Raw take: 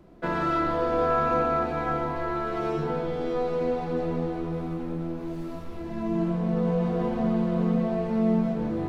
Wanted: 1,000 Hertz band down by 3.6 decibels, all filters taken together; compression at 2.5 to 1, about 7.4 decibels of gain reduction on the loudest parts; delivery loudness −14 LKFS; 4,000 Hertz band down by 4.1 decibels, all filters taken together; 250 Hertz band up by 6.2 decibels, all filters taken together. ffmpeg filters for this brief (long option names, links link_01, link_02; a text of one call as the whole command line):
ffmpeg -i in.wav -af "equalizer=frequency=250:width_type=o:gain=8.5,equalizer=frequency=1000:width_type=o:gain=-5.5,equalizer=frequency=4000:width_type=o:gain=-5,acompressor=threshold=-25dB:ratio=2.5,volume=14dB" out.wav